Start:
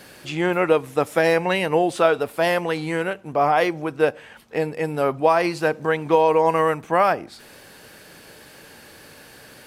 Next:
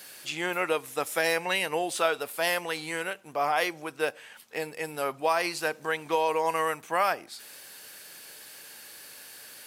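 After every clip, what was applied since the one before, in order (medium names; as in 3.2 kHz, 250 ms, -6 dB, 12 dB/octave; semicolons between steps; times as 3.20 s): tilt EQ +3.5 dB/octave; trim -7 dB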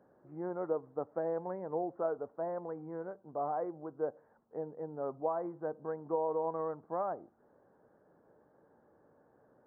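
Gaussian low-pass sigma 10 samples; trim -3 dB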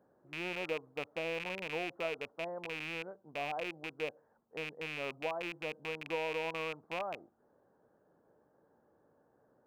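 rattle on loud lows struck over -48 dBFS, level -25 dBFS; trim -4 dB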